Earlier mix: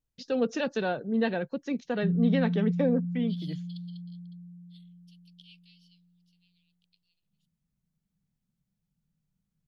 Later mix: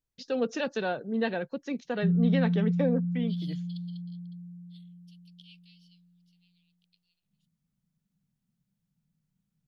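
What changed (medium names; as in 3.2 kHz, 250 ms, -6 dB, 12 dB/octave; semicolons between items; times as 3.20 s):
background +6.0 dB; master: add bass shelf 260 Hz -5 dB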